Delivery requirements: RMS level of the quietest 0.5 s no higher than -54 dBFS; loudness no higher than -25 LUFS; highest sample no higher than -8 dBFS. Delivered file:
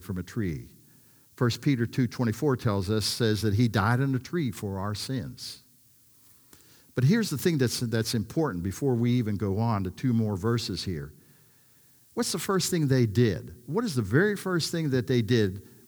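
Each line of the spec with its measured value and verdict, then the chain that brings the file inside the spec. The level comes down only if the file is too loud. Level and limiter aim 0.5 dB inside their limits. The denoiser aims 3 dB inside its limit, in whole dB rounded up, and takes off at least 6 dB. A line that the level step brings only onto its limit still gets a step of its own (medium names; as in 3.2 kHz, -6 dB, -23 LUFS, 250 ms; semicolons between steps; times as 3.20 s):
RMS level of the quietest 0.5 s -60 dBFS: pass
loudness -27.5 LUFS: pass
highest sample -8.5 dBFS: pass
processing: none needed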